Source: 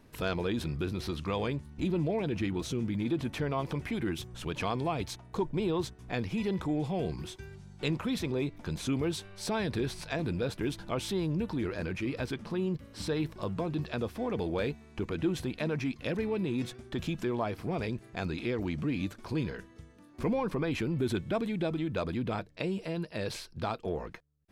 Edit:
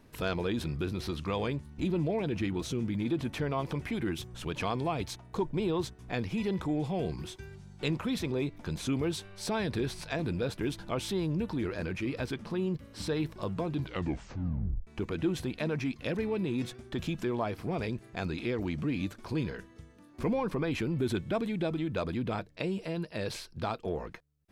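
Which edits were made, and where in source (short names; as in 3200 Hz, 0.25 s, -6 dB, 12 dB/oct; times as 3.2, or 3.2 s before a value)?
13.72 tape stop 1.15 s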